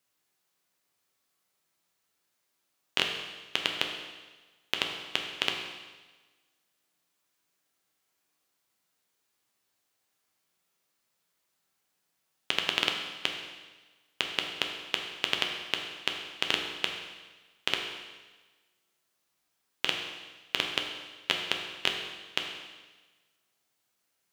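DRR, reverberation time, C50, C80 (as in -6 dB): 1.5 dB, 1.3 s, 4.5 dB, 6.0 dB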